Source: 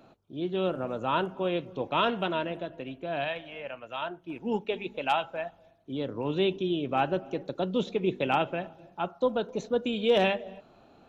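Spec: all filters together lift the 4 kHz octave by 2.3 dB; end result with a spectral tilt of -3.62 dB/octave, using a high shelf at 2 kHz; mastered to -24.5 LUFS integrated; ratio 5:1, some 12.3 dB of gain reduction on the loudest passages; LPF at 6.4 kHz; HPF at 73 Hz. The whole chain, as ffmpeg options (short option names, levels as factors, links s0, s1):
-af "highpass=73,lowpass=6400,highshelf=f=2000:g=-3,equalizer=f=4000:t=o:g=6.5,acompressor=threshold=0.0224:ratio=5,volume=4.73"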